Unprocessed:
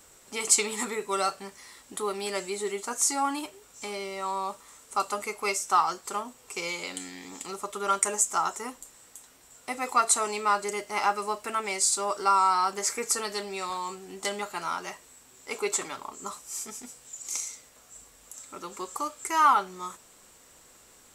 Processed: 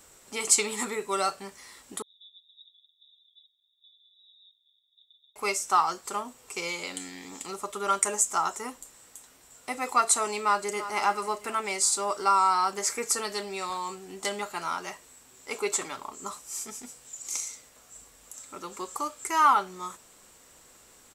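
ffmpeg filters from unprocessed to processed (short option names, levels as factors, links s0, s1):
-filter_complex "[0:a]asettb=1/sr,asplit=3[s0][s1][s2];[s0]atrim=end=2.024[s3];[s1]atrim=start=2.02:end=5.36,asetpts=PTS-STARTPTS,afade=t=in:d=0.004:c=qsin,afade=t=out:st=3.336:d=0.004:c=qsin,asuperpass=centerf=3600:order=20:qfactor=7.9[s4];[s2]atrim=start=5.356[s5];[s3][s4]acrossfade=d=0.004:c1=hsin:c2=qsin[s6];[s6][s5]acrossfade=d=0.004:c1=qsin:c2=hsin,asplit=2[s7][s8];[s8]afade=t=in:st=10.41:d=0.01,afade=t=out:st=10.94:d=0.01,aecho=0:1:340|680|1020|1360|1700:0.223872|0.111936|0.055968|0.027984|0.013992[s9];[s7][s9]amix=inputs=2:normalize=0"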